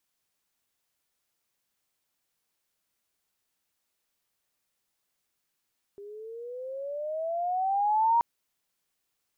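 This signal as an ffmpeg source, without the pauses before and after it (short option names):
-f lavfi -i "aevalsrc='pow(10,(-19+22*(t/2.23-1))/20)*sin(2*PI*399*2.23/(15*log(2)/12)*(exp(15*log(2)/12*t/2.23)-1))':d=2.23:s=44100"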